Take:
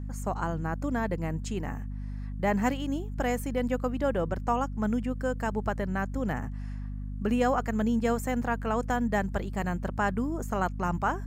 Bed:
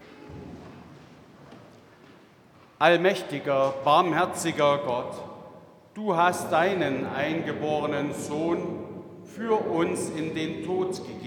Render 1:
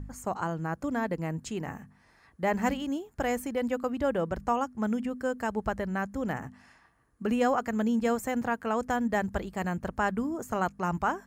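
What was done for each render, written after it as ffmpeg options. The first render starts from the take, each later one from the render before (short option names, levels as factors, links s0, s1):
-af "bandreject=f=50:t=h:w=4,bandreject=f=100:t=h:w=4,bandreject=f=150:t=h:w=4,bandreject=f=200:t=h:w=4,bandreject=f=250:t=h:w=4"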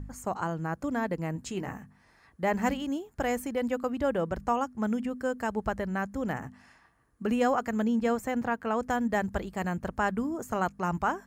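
-filter_complex "[0:a]asettb=1/sr,asplit=3[s0][s1][s2];[s0]atrim=end=1.344[s3];[s1]atrim=start=1.34:end=1.8,asetpts=PTS-STARTPTS,afade=t=in:d=0.004:c=qsin,afade=t=out:st=0.456:d=0.004:c=qsin,asplit=2[s4][s5];[s5]adelay=16,volume=0.398[s6];[s4][s6]amix=inputs=2:normalize=0,atrim=end_sample=20286[s7];[s2]atrim=start=1.796[s8];[s3][s7]acrossfade=d=0.004:c1=hsin:c2=qsin[s9];[s9][s8]acrossfade=d=0.004:c1=qsin:c2=hsin,asettb=1/sr,asplit=3[s10][s11][s12];[s10]atrim=end=7.844[s13];[s11]atrim=start=7.84:end=8.85,asetpts=PTS-STARTPTS,afade=t=in:d=0.004:c=qsin,afade=t=out:st=1.006:d=0.004:c=qsin,equalizer=f=11000:t=o:w=1.7:g=-6[s14];[s12]atrim=start=8.846[s15];[s13][s14]acrossfade=d=0.004:c1=hsin:c2=qsin[s16];[s16][s15]acrossfade=d=0.004:c1=qsin:c2=hsin"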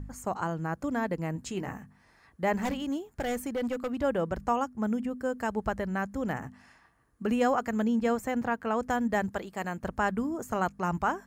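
-filter_complex "[0:a]asettb=1/sr,asplit=3[s0][s1][s2];[s0]atrim=end=2.564[s3];[s1]atrim=start=2.56:end=4.03,asetpts=PTS-STARTPTS,afade=t=in:d=0.004:c=qsin,afade=t=out:st=1.466:d=0.004:c=qsin,volume=21.1,asoftclip=hard,volume=0.0473[s4];[s2]atrim=start=4.026[s5];[s3][s4]acrossfade=d=0.004:c1=hsin:c2=qsin[s6];[s6][s5]acrossfade=d=0.004:c1=qsin:c2=hsin,asettb=1/sr,asplit=3[s7][s8][s9];[s7]atrim=end=4.694[s10];[s8]atrim=start=4.69:end=5.33,asetpts=PTS-STARTPTS,afade=t=in:d=0.004:c=qsin,afade=t=out:st=0.636:d=0.004:c=qsin,equalizer=f=3400:w=0.37:g=-4[s11];[s9]atrim=start=5.326[s12];[s10][s11]acrossfade=d=0.004:c1=hsin:c2=qsin[s13];[s13][s12]acrossfade=d=0.004:c1=qsin:c2=hsin,asettb=1/sr,asplit=3[s14][s15][s16];[s14]atrim=end=9.304[s17];[s15]atrim=start=9.3:end=9.83,asetpts=PTS-STARTPTS,afade=t=in:d=0.004:c=qsin,afade=t=out:st=0.526:d=0.004:c=qsin,highpass=f=300:p=1[s18];[s16]atrim=start=9.826[s19];[s17][s18]acrossfade=d=0.004:c1=hsin:c2=qsin[s20];[s20][s19]acrossfade=d=0.004:c1=qsin:c2=hsin"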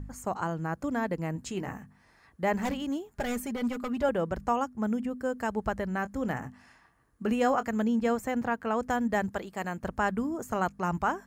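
-filter_complex "[0:a]asettb=1/sr,asplit=3[s0][s1][s2];[s0]atrim=end=3.144[s3];[s1]atrim=start=3.14:end=4.09,asetpts=PTS-STARTPTS,afade=t=in:d=0.004:c=qsin,afade=t=out:st=0.946:d=0.004:c=qsin,aecho=1:1:4.9:0.65,atrim=end_sample=41895[s4];[s2]atrim=start=4.086[s5];[s3][s4]acrossfade=d=0.004:c1=hsin:c2=qsin[s6];[s6][s5]acrossfade=d=0.004:c1=qsin:c2=hsin,asettb=1/sr,asplit=3[s7][s8][s9];[s7]atrim=end=5.934[s10];[s8]atrim=start=5.93:end=7.67,asetpts=PTS-STARTPTS,afade=t=in:d=0.004:c=qsin,afade=t=out:st=1.736:d=0.004:c=qsin,asplit=2[s11][s12];[s12]adelay=23,volume=0.224[s13];[s11][s13]amix=inputs=2:normalize=0,atrim=end_sample=76734[s14];[s9]atrim=start=7.666[s15];[s10][s14]acrossfade=d=0.004:c1=hsin:c2=qsin[s16];[s16][s15]acrossfade=d=0.004:c1=qsin:c2=hsin"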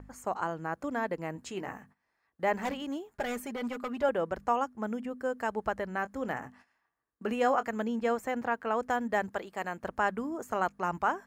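-af "agate=range=0.158:threshold=0.00251:ratio=16:detection=peak,bass=f=250:g=-11,treble=f=4000:g=-5"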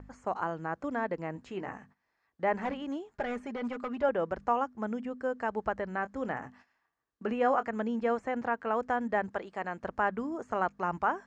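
-filter_complex "[0:a]acrossover=split=2600[s0][s1];[s1]acompressor=threshold=0.00126:ratio=4:attack=1:release=60[s2];[s0][s2]amix=inputs=2:normalize=0,lowpass=f=7000:w=0.5412,lowpass=f=7000:w=1.3066"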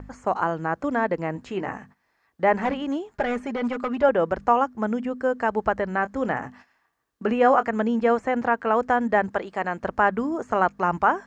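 -af "volume=2.82"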